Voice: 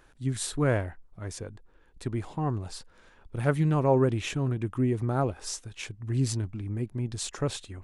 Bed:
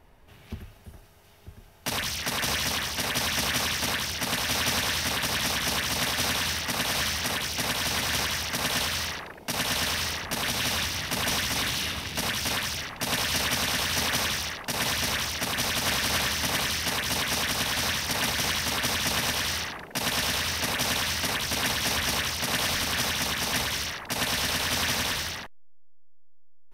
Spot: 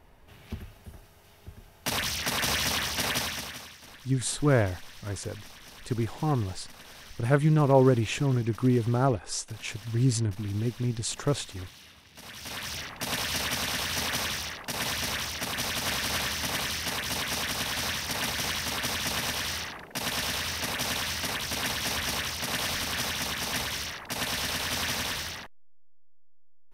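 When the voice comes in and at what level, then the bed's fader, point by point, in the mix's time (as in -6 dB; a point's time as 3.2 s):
3.85 s, +2.5 dB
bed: 3.13 s 0 dB
3.78 s -21.5 dB
12.07 s -21.5 dB
12.75 s -3.5 dB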